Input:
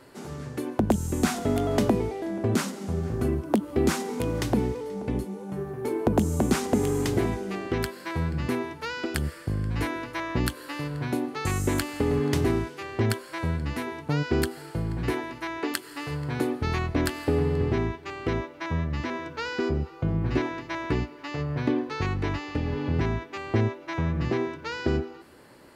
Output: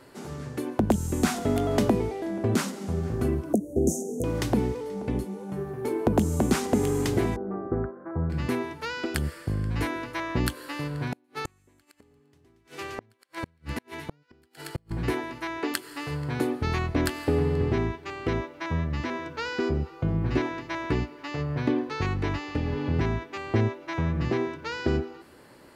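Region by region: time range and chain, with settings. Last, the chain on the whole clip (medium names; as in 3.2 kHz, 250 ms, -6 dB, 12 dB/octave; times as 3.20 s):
3.53–4.24 s: Chebyshev band-stop 700–6200 Hz, order 5 + dynamic bell 5.4 kHz, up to +7 dB, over -53 dBFS, Q 1.1 + upward compressor, threshold -36 dBFS
7.36–8.30 s: steep low-pass 1.3 kHz + band-stop 1 kHz, Q 14
10.88–14.91 s: feedback echo behind a high-pass 115 ms, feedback 65%, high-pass 1.6 kHz, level -5.5 dB + inverted gate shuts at -19 dBFS, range -37 dB
whole clip: none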